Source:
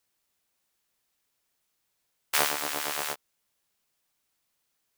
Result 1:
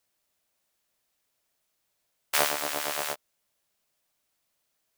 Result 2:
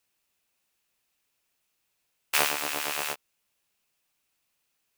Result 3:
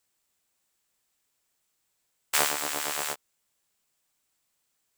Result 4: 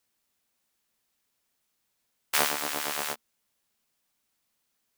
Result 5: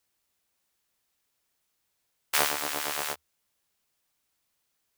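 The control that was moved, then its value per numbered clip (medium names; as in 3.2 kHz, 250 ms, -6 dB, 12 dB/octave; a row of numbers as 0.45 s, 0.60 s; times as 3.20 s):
peaking EQ, frequency: 620 Hz, 2.6 kHz, 7.7 kHz, 230 Hz, 74 Hz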